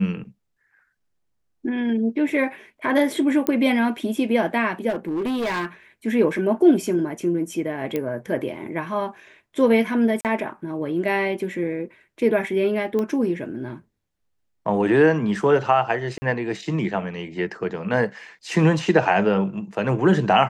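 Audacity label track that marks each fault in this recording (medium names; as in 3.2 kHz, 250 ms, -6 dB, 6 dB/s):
3.470000	3.470000	pop -7 dBFS
4.890000	5.660000	clipped -21.5 dBFS
7.960000	7.960000	pop -13 dBFS
10.210000	10.250000	dropout 38 ms
12.990000	12.990000	pop -15 dBFS
16.180000	16.220000	dropout 40 ms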